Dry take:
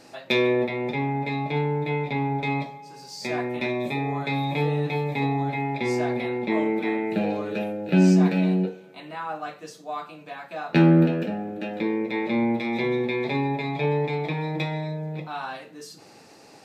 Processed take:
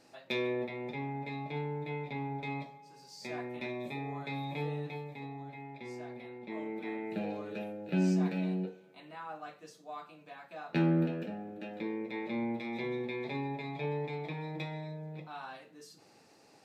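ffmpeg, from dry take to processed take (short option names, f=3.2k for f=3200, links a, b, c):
-af "volume=-4.5dB,afade=t=out:st=4.72:d=0.46:silence=0.446684,afade=t=in:st=6.39:d=0.74:silence=0.421697"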